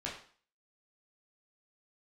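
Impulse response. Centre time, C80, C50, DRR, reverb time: 34 ms, 10.0 dB, 6.0 dB, -5.0 dB, 0.45 s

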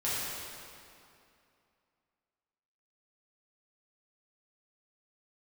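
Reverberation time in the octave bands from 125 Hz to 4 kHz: 2.5, 2.7, 2.6, 2.6, 2.3, 2.0 s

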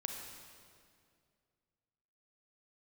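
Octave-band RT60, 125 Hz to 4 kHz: 2.7, 2.5, 2.4, 2.1, 1.9, 1.8 s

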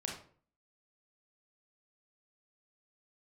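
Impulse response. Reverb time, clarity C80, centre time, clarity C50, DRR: 0.50 s, 9.5 dB, 32 ms, 4.5 dB, -1.0 dB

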